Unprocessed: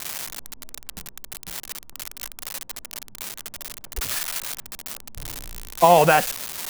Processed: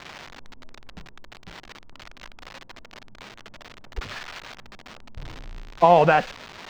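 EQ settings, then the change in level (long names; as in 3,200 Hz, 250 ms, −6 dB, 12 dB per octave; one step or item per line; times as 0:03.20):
high-frequency loss of the air 200 metres
high-shelf EQ 6,200 Hz −6 dB
0.0 dB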